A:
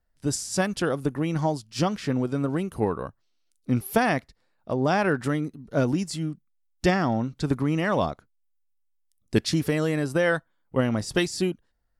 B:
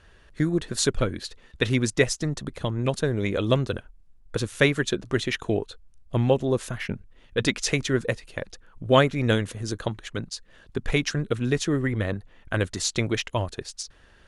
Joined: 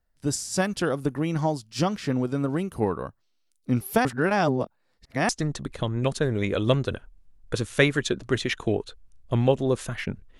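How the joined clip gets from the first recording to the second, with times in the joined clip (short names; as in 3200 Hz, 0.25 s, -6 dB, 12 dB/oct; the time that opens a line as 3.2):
A
4.05–5.29 reverse
5.29 switch to B from 2.11 s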